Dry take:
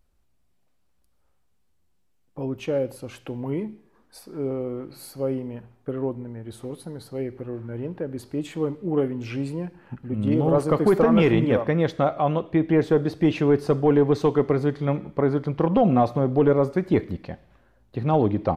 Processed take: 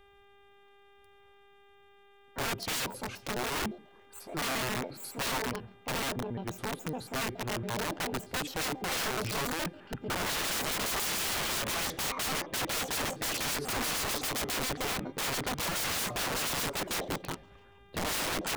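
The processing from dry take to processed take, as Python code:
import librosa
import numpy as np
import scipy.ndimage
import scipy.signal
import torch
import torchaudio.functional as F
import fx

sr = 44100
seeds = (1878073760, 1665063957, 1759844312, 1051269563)

y = fx.pitch_trill(x, sr, semitones=9.5, every_ms=70)
y = (np.mod(10.0 ** (27.5 / 20.0) * y + 1.0, 2.0) - 1.0) / 10.0 ** (27.5 / 20.0)
y = fx.dmg_buzz(y, sr, base_hz=400.0, harmonics=9, level_db=-61.0, tilt_db=-4, odd_only=False)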